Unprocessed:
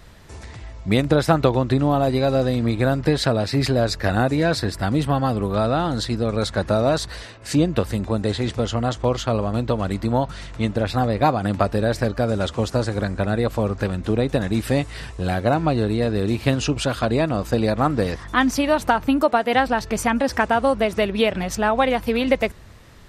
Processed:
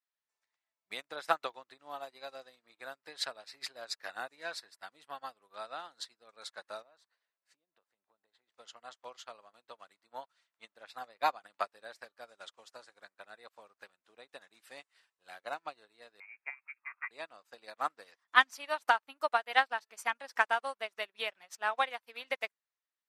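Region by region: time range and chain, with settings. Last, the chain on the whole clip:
6.82–8.52 s: treble shelf 2.5 kHz -11.5 dB + compression 16:1, threshold -22 dBFS
16.20–17.11 s: high-pass 760 Hz 6 dB/octave + distance through air 300 m + frequency inversion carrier 2.6 kHz
whole clip: high-pass 1 kHz 12 dB/octave; upward expansion 2.5:1, over -46 dBFS

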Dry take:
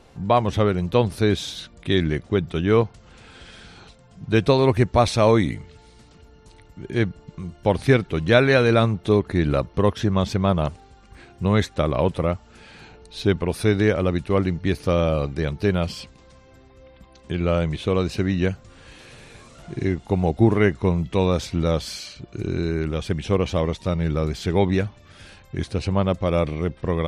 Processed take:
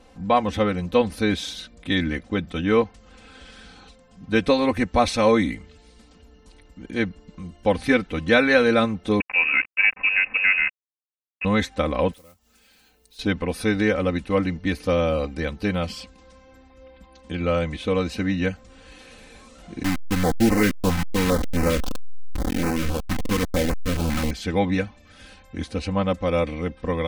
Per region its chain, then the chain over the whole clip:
9.20–11.45 s: bass shelf 250 Hz -5.5 dB + small samples zeroed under -30 dBFS + frequency inversion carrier 2.7 kHz
12.13–13.19 s: block-companded coder 5-bit + compression 2:1, threshold -44 dBFS + pre-emphasis filter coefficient 0.8
19.83–24.31 s: send-on-delta sampling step -19.5 dBFS + waveshaping leveller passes 1 + step-sequenced notch 7.5 Hz 470–3400 Hz
whole clip: comb 3.9 ms, depth 86%; dynamic bell 2 kHz, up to +4 dB, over -37 dBFS, Q 1.5; trim -3.5 dB

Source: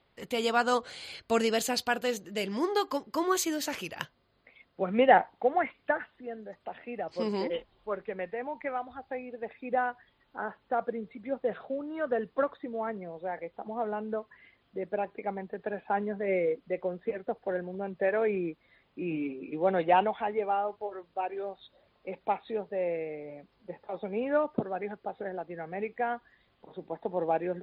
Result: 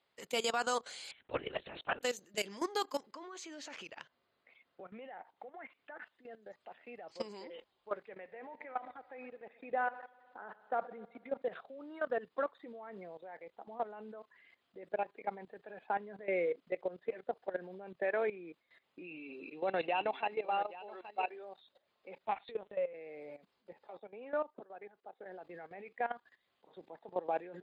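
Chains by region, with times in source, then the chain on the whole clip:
1.11–2.03 s: low-pass 2.5 kHz 6 dB/octave + peaking EQ 680 Hz -4 dB 1.7 oct + LPC vocoder at 8 kHz whisper
3.11–6.02 s: low-pass 3.6 kHz + compression 2:1, threshold -44 dBFS
8.09–11.42 s: low-pass 3.7 kHz + hum notches 60/120/180 Hz + multi-head delay 63 ms, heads first and second, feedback 68%, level -21.5 dB
19.04–21.30 s: small resonant body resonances 2.7/4 kHz, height 16 dB, ringing for 25 ms + delay 824 ms -14.5 dB
22.27–22.94 s: high-pass 54 Hz + treble shelf 2.3 kHz +7 dB + LPC vocoder at 8 kHz pitch kept
23.98–25.26 s: high-pass 210 Hz + treble shelf 3.3 kHz -6.5 dB + upward expansion, over -37 dBFS
whole clip: high-pass 480 Hz 6 dB/octave; peaking EQ 7 kHz +8.5 dB 0.75 oct; level held to a coarse grid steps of 16 dB

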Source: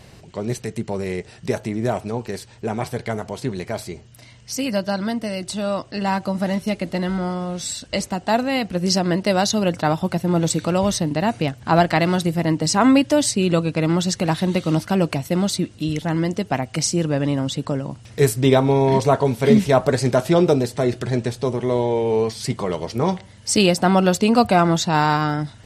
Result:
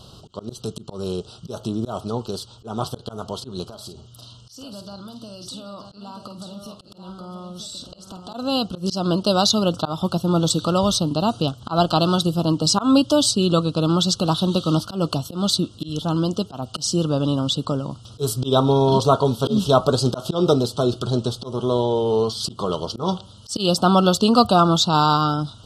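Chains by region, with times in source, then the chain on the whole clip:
3.67–8.34 s: compression 16:1, threshold -34 dBFS + doubling 50 ms -10 dB + delay 934 ms -7 dB
whole clip: elliptic band-stop 1.3–3.1 kHz, stop band 60 dB; high-order bell 2.4 kHz +8 dB 2.3 oct; slow attack 151 ms

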